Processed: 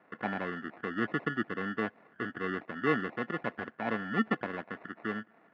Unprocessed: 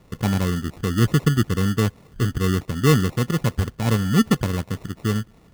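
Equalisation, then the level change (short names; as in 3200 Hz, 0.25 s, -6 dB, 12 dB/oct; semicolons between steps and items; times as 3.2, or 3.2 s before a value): dynamic EQ 1400 Hz, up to -5 dB, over -39 dBFS, Q 1.4; speaker cabinet 210–2000 Hz, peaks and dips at 220 Hz +5 dB, 310 Hz +5 dB, 690 Hz +8 dB, 1600 Hz +9 dB; tilt +4 dB/oct; -6.0 dB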